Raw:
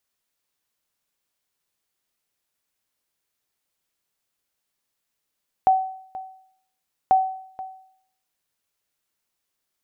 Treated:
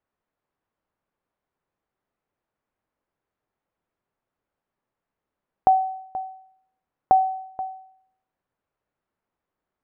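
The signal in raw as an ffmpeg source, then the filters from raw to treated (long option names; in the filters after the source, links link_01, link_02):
-f lavfi -i "aevalsrc='0.316*(sin(2*PI*758*mod(t,1.44))*exp(-6.91*mod(t,1.44)/0.64)+0.133*sin(2*PI*758*max(mod(t,1.44)-0.48,0))*exp(-6.91*max(mod(t,1.44)-0.48,0)/0.64))':duration=2.88:sample_rate=44100"
-filter_complex "[0:a]asplit=2[link_01][link_02];[link_02]acompressor=threshold=-27dB:ratio=6,volume=-1dB[link_03];[link_01][link_03]amix=inputs=2:normalize=0,lowpass=1200"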